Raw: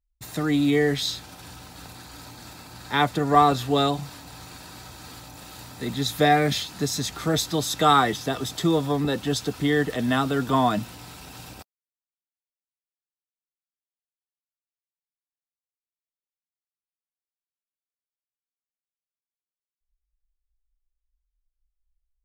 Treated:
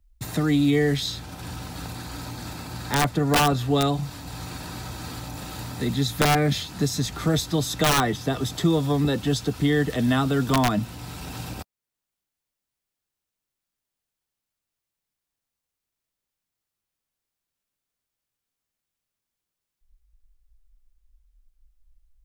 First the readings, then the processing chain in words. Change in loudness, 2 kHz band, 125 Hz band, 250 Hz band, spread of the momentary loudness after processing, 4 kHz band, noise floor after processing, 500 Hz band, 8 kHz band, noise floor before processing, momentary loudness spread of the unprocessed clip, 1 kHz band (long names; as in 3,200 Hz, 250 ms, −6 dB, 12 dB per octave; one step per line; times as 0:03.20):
−1.0 dB, 0.0 dB, +4.5 dB, +1.5 dB, 15 LU, 0.0 dB, below −85 dBFS, −1.0 dB, +1.5 dB, below −85 dBFS, 23 LU, −4.0 dB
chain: wrap-around overflow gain 10.5 dB
low-shelf EQ 200 Hz +10 dB
multiband upward and downward compressor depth 40%
level −2 dB